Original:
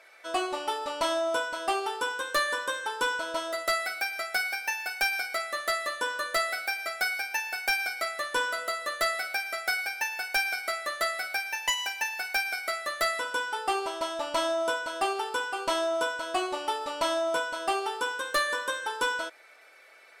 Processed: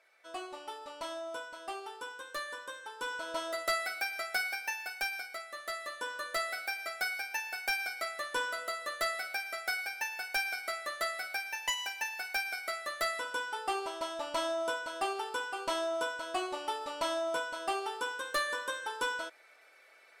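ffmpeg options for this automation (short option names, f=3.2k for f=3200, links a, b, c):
-af "volume=2.5dB,afade=t=in:st=2.96:d=0.46:silence=0.375837,afade=t=out:st=4.43:d=1.03:silence=0.398107,afade=t=in:st=5.46:d=1.15:silence=0.473151"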